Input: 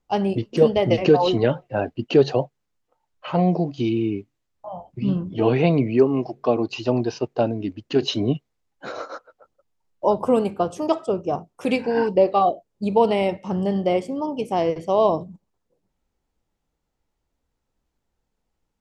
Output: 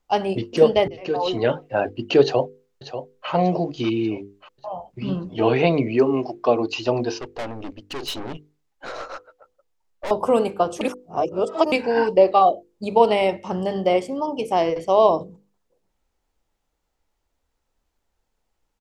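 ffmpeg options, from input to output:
-filter_complex "[0:a]asplit=2[s0][s1];[s1]afade=t=in:st=2.22:d=0.01,afade=t=out:st=3.3:d=0.01,aecho=0:1:590|1180|1770|2360|2950:0.298538|0.149269|0.0746346|0.0373173|0.0186586[s2];[s0][s2]amix=inputs=2:normalize=0,asettb=1/sr,asplit=3[s3][s4][s5];[s3]atrim=end=7.194[s6];[s4]atrim=start=7.19:end=10.11,asetpts=PTS-STARTPTS,afade=t=in:d=0.004:c=qsin,afade=t=out:st=2.916:d=0.004:c=qsin,aeval=exprs='(tanh(28.2*val(0)+0.5)-tanh(0.5))/28.2':c=same[s7];[s5]atrim=start=10.106[s8];[s6][s7]acrossfade=d=0.004:c1=hsin:c2=qsin[s9];[s9][s8]acrossfade=d=0.004:c1=qsin:c2=hsin,asplit=4[s10][s11][s12][s13];[s10]atrim=end=0.88,asetpts=PTS-STARTPTS,afade=t=out:st=0.876:d=0.004:c=hsin[s14];[s11]atrim=start=0.88:end=10.812,asetpts=PTS-STARTPTS,afade=t=in:d=0.73[s15];[s12]atrim=start=10.808:end=11.722,asetpts=PTS-STARTPTS,areverse[s16];[s13]atrim=start=11.718[s17];[s14][s15]concat=n=2:v=0:a=1[s18];[s18][s16]acrossfade=d=0.004:c1=hsin:c2=hsin[s19];[s19][s17]acrossfade=d=0.004:c1=hsin:c2=hsin,equalizer=f=150:w=0.62:g=-7.5,bandreject=f=50:t=h:w=6,bandreject=f=100:t=h:w=6,bandreject=f=150:t=h:w=6,bandreject=f=200:t=h:w=6,bandreject=f=250:t=h:w=6,bandreject=f=300:t=h:w=6,bandreject=f=350:t=h:w=6,bandreject=f=400:t=h:w=6,bandreject=f=450:t=h:w=6,bandreject=f=500:t=h:w=6,volume=1.58"

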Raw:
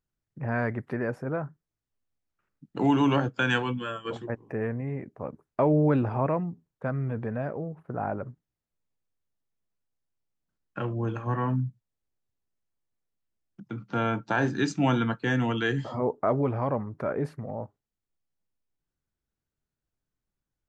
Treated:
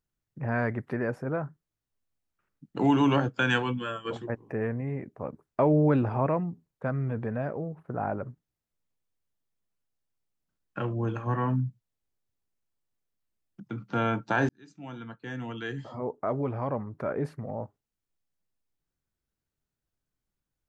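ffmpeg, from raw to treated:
-filter_complex "[0:a]asplit=2[s0][s1];[s0]atrim=end=14.49,asetpts=PTS-STARTPTS,afade=t=out:st=14.486:d=0.004:c=hsin[s2];[s1]atrim=start=14.49,asetpts=PTS-STARTPTS,afade=t=in:d=3.08[s3];[s2][s3]concat=n=2:v=0:a=1"

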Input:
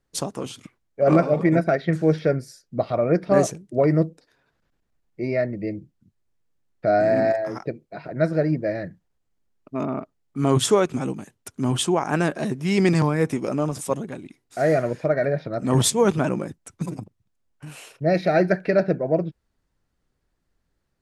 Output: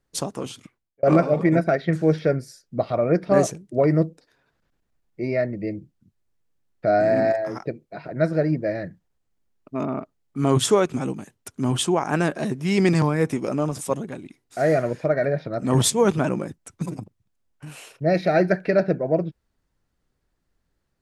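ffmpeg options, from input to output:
-filter_complex "[0:a]asplit=2[s0][s1];[s0]atrim=end=1.03,asetpts=PTS-STARTPTS,afade=t=out:st=0.51:d=0.52[s2];[s1]atrim=start=1.03,asetpts=PTS-STARTPTS,afade=t=in:d=0.004:c=hsin[s3];[s2][s3]concat=n=2:v=0:a=1"

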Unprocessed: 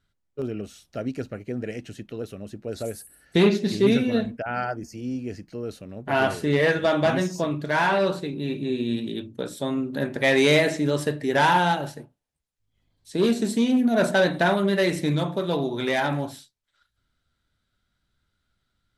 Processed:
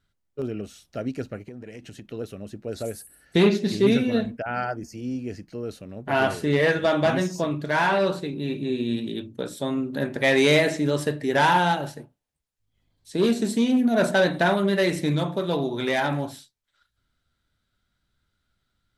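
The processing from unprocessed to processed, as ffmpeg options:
-filter_complex "[0:a]asettb=1/sr,asplit=3[s0][s1][s2];[s0]atrim=end=1.414[s3];[s1]atrim=start=1.41:end=2.05,asetpts=PTS-STARTPTS,afade=t=in:d=0.004:c=qsin,afade=t=out:st=0.636:d=0.004:c=qsin,acompressor=threshold=0.0178:ratio=12:attack=3.2:release=140:knee=1:detection=peak[s4];[s2]atrim=start=2.046[s5];[s3][s4]acrossfade=d=0.004:c1=hsin:c2=qsin[s6];[s6][s5]acrossfade=d=0.004:c1=qsin:c2=hsin"

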